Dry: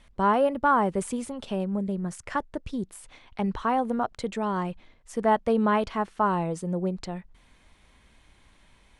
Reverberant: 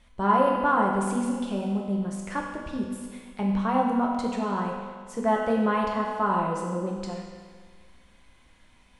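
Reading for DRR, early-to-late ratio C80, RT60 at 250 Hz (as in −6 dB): −2.0 dB, 3.0 dB, 1.7 s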